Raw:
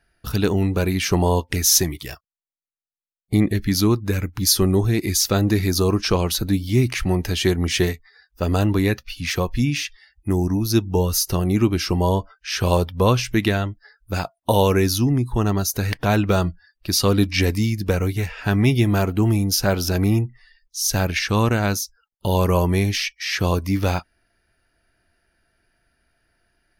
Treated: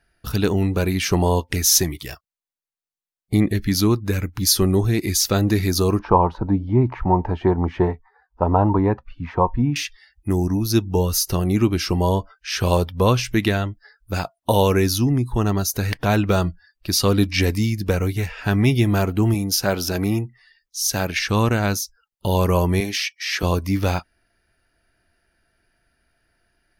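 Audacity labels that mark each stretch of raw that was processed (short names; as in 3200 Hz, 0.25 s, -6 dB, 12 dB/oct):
5.990000	9.760000	synth low-pass 920 Hz, resonance Q 6.8
19.340000	21.180000	HPF 160 Hz 6 dB/oct
22.800000	23.430000	HPF 230 Hz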